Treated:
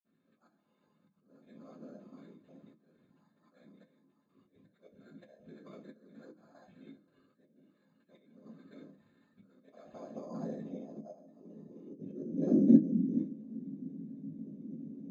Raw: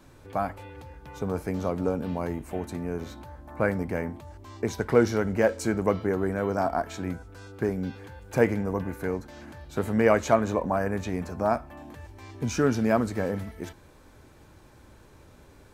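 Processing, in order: time reversed locally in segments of 46 ms; low-pass 3.3 kHz 12 dB/octave; inharmonic resonator 65 Hz, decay 0.43 s, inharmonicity 0.002; whisper effect; slow attack 532 ms; high-pass sweep 1.3 kHz -> 250 Hz, 9.69–13.48 s; sample-and-hold 8×; speed mistake 24 fps film run at 25 fps; reverberation, pre-delay 46 ms, DRR -60 dB; trim +5.5 dB

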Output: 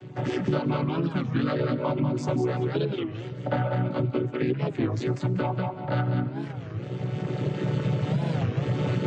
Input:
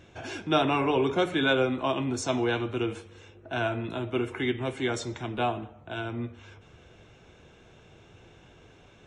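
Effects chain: vocoder on a held chord minor triad, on B2; recorder AGC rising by 16 dB/s; bass shelf 160 Hz +6.5 dB; reverb removal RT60 0.67 s; 0.81–1.28 s: high-order bell 610 Hz -14 dB 1.3 oct; 2.61–3.01 s: resonant low-pass 3.5 kHz, resonance Q 4.7; thinning echo 193 ms, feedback 16%, high-pass 390 Hz, level -4 dB; reverberation RT60 2.6 s, pre-delay 63 ms, DRR 16 dB; compression 3:1, threshold -34 dBFS, peak gain reduction 11.5 dB; warped record 33 1/3 rpm, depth 250 cents; trim +9 dB

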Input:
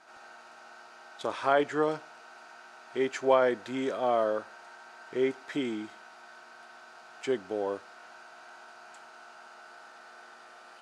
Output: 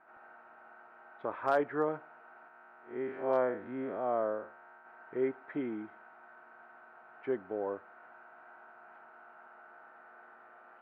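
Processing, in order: 2.48–4.85 s: spectral blur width 132 ms; low-pass 1.9 kHz 24 dB/octave; overload inside the chain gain 15 dB; trim -4 dB

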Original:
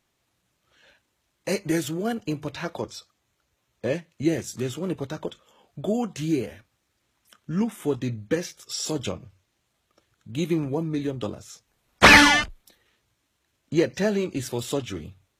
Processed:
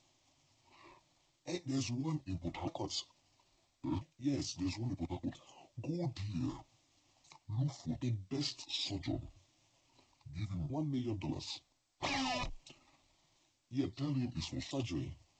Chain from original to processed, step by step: sawtooth pitch modulation -11.5 st, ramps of 1337 ms; reverse; compression 5:1, threshold -38 dBFS, peak gain reduction 26 dB; reverse; static phaser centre 300 Hz, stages 8; trim +4.5 dB; G.722 64 kbps 16 kHz

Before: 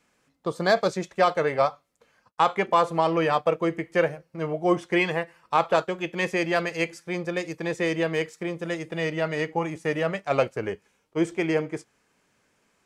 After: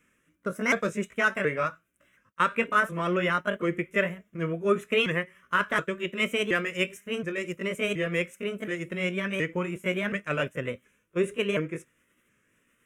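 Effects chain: sawtooth pitch modulation +4.5 st, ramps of 723 ms; static phaser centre 1.9 kHz, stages 4; trim +3 dB

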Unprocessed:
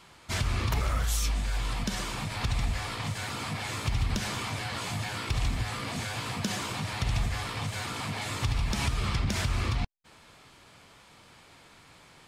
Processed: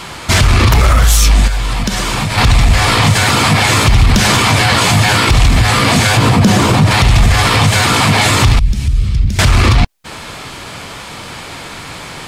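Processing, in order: 6.17–6.91 s: tilt shelf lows +5.5 dB, about 850 Hz; saturation -20.5 dBFS, distortion -21 dB; 1.47–2.38 s: compression 10:1, threshold -39 dBFS, peak gain reduction 12 dB; 8.59–9.39 s: amplifier tone stack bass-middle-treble 10-0-1; loudness maximiser +27.5 dB; trim -1 dB; Vorbis 192 kbps 48 kHz

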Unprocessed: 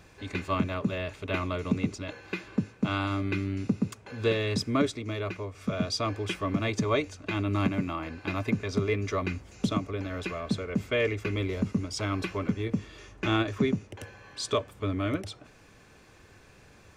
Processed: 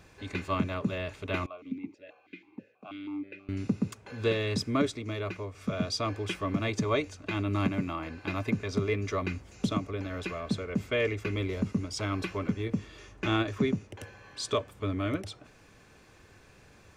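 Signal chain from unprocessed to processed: 1.46–3.49 s: stepped vowel filter 6.2 Hz; trim -1.5 dB

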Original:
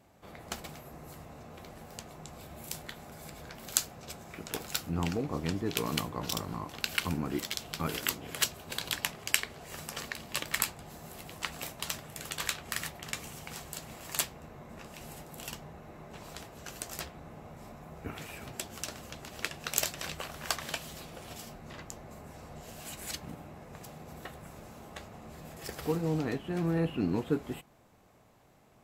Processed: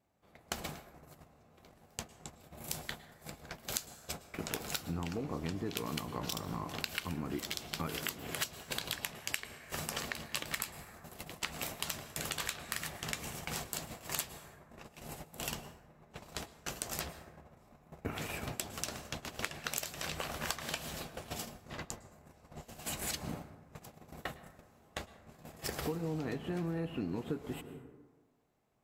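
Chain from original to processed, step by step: gate -44 dBFS, range -22 dB; plate-style reverb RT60 1.3 s, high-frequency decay 0.4×, pre-delay 95 ms, DRR 16.5 dB; compression 6:1, threshold -41 dBFS, peak gain reduction 19.5 dB; trim +6.5 dB

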